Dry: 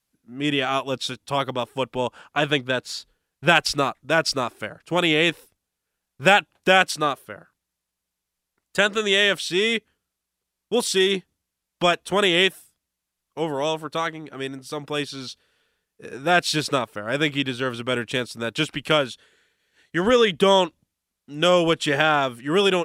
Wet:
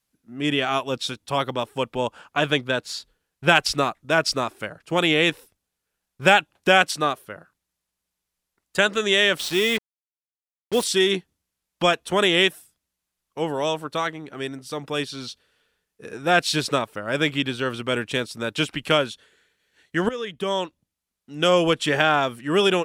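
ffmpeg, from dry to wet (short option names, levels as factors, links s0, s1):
-filter_complex "[0:a]asettb=1/sr,asplit=3[s0][s1][s2];[s0]atrim=end=9.384[s3];[s1]atrim=start=9.38:end=10.84,asetpts=PTS-STARTPTS,afade=t=in:d=0.004:c=qsin,afade=t=out:st=1.456:d=0.004:c=qsin,acrusher=bits=4:mix=0:aa=0.5[s4];[s2]atrim=start=10.836[s5];[s3][s4]acrossfade=d=0.004:c1=hsin:c2=qsin[s6];[s6][s5]acrossfade=d=0.004:c1=qsin:c2=hsin,asplit=2[s7][s8];[s7]atrim=end=20.09,asetpts=PTS-STARTPTS,afade=t=out:st=20.086:d=0.004:c=hsin:silence=0.149624[s9];[s8]atrim=start=20.09,asetpts=PTS-STARTPTS,afade=t=in:d=1.53:silence=0.149624[s10];[s9][s10]concat=n=2:v=0:a=1"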